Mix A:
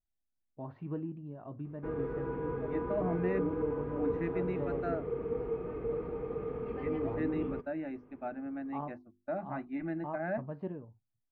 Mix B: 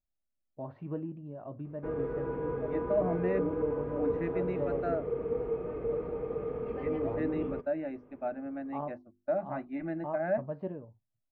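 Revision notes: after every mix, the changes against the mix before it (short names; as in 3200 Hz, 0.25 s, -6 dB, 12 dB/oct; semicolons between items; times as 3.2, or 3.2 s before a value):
master: add bell 580 Hz +7.5 dB 0.46 oct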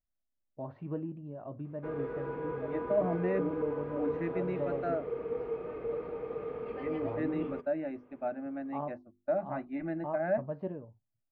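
background: add tilt +2.5 dB/oct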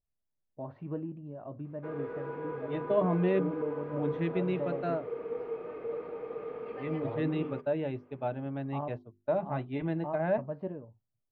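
second voice: remove fixed phaser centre 660 Hz, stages 8; background: add HPF 240 Hz 6 dB/oct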